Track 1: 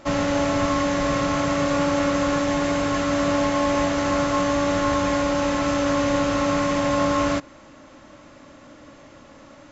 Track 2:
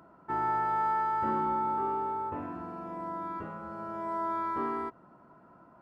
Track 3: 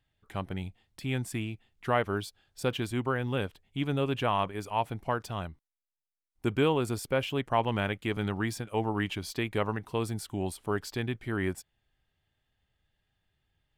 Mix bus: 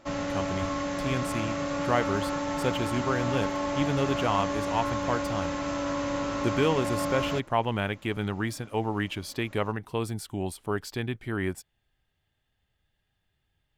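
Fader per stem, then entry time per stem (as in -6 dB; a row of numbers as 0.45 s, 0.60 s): -9.0 dB, -11.0 dB, +1.0 dB; 0.00 s, 1.65 s, 0.00 s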